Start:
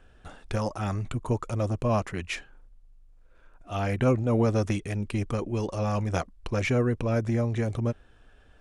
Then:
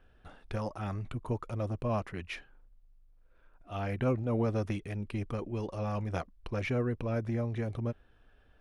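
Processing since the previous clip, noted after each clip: peaking EQ 7.4 kHz -12 dB 0.72 oct; trim -6.5 dB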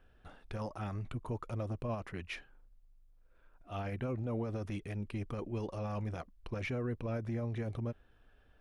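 peak limiter -27 dBFS, peak gain reduction 10 dB; trim -2 dB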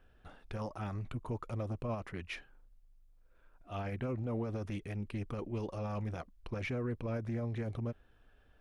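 loudspeaker Doppler distortion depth 0.12 ms

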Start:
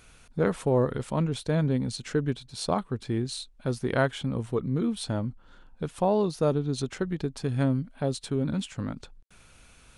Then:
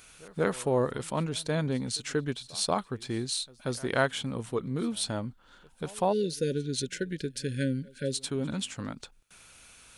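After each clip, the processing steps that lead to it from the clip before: spectral selection erased 6.12–8.17 s, 570–1400 Hz; tilt EQ +2 dB/octave; reverse echo 184 ms -23.5 dB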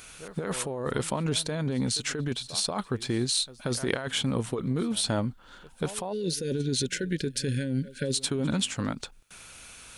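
compressor with a negative ratio -32 dBFS, ratio -1; trim +4 dB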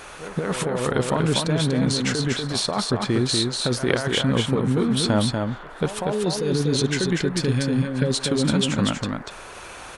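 treble shelf 7.5 kHz -11 dB; band noise 320–1700 Hz -50 dBFS; delay 241 ms -4 dB; trim +6.5 dB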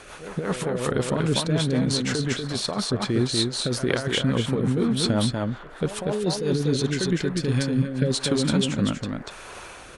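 rotary cabinet horn 5.5 Hz, later 0.9 Hz, at 6.94 s

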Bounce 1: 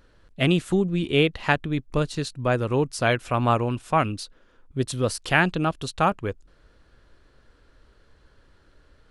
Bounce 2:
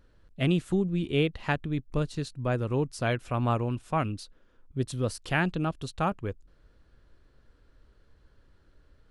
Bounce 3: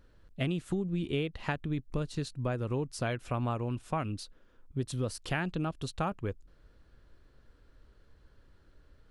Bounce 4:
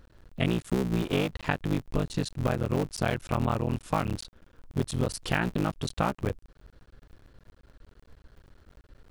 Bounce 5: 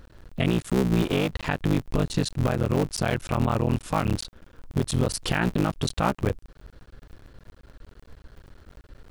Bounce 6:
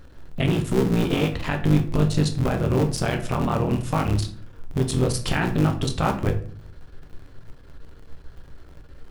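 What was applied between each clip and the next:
bass shelf 340 Hz +6.5 dB; trim -8.5 dB
compression 6:1, threshold -28 dBFS, peak gain reduction 8.5 dB
cycle switcher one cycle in 3, muted; trim +6.5 dB
peak limiter -19 dBFS, peak gain reduction 8 dB; trim +6.5 dB
reverberation RT60 0.45 s, pre-delay 7 ms, DRR 4 dB

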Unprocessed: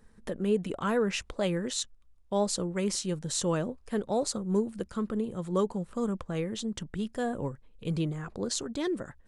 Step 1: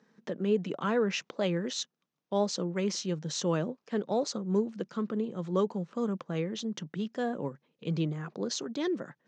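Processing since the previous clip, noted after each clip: Chebyshev band-pass 150–6300 Hz, order 4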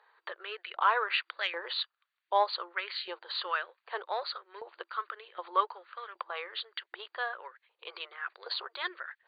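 FFT band-pass 340–4700 Hz; Chebyshev shaper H 3 -29 dB, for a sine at -17.5 dBFS; LFO high-pass saw up 1.3 Hz 860–1900 Hz; trim +4 dB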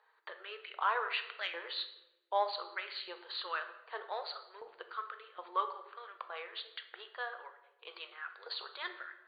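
simulated room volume 390 m³, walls mixed, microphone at 0.56 m; trim -6 dB

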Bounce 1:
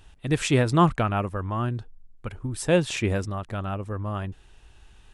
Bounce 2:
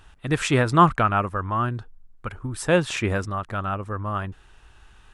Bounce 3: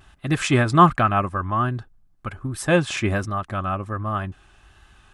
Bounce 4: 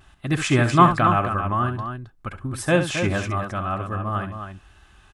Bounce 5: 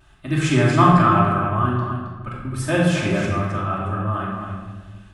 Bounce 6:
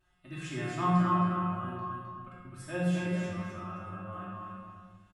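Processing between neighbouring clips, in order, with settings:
peaking EQ 1.3 kHz +8.5 dB 1.1 oct
vibrato 1.3 Hz 51 cents; comb of notches 470 Hz; trim +2.5 dB
loudspeakers at several distances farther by 23 m -10 dB, 92 m -8 dB; trim -1 dB
reverberation RT60 1.4 s, pre-delay 3 ms, DRR -4 dB; trim -4.5 dB
feedback comb 180 Hz, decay 0.43 s, harmonics all, mix 90%; delay 259 ms -5.5 dB; trim -5 dB

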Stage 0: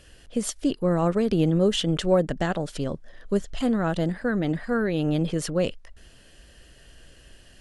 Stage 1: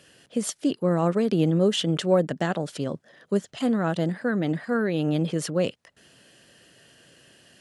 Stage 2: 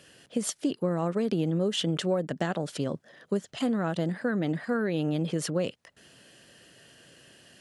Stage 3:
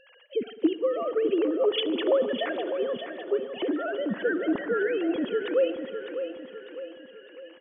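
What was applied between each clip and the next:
high-pass 120 Hz 24 dB/octave
compression 4:1, threshold -24 dBFS, peak gain reduction 8.5 dB
formants replaced by sine waves; on a send: feedback delay 604 ms, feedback 47%, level -9 dB; on the sum: spring tank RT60 3.3 s, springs 52 ms, chirp 35 ms, DRR 12.5 dB; trim +1.5 dB

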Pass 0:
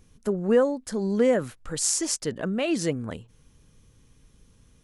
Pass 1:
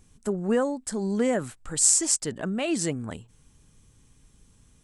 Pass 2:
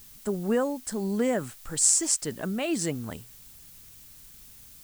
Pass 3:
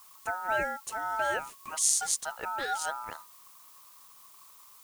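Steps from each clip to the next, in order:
graphic EQ with 31 bands 500 Hz -5 dB, 800 Hz +3 dB, 8 kHz +11 dB; trim -1 dB
added noise blue -49 dBFS; trim -1.5 dB
ring modulator 1.1 kHz; trim -1.5 dB

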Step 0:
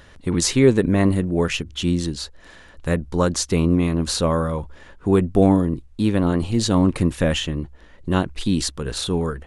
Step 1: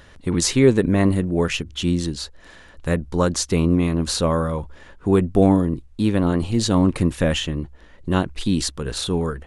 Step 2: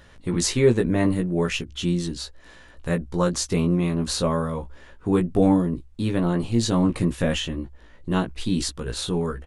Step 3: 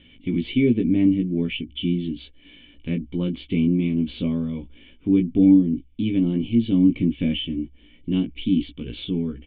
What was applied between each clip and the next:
no audible change
doubling 17 ms -4 dB; trim -4.5 dB
cascade formant filter i; treble shelf 3.3 kHz +11 dB; tape noise reduction on one side only encoder only; trim +8 dB

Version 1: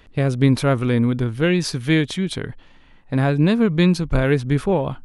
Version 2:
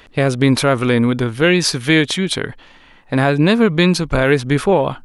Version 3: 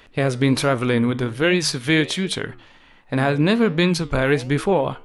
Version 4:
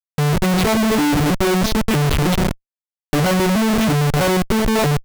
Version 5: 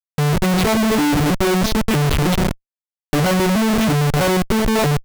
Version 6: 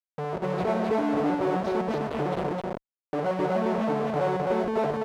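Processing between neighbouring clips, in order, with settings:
bass shelf 260 Hz -11 dB; in parallel at +2 dB: peak limiter -15 dBFS, peak gain reduction 7.5 dB; on the sum: trim +2.5 dB
flange 1.3 Hz, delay 7.5 ms, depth 7.3 ms, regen -83%
vocoder on a broken chord major triad, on D3, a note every 322 ms; Schmitt trigger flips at -33 dBFS; trim +5.5 dB
no audible change
band-pass filter 590 Hz, Q 1.2; on a send: loudspeakers at several distances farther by 20 m -9 dB, 89 m -1 dB; on the sum: trim -6 dB

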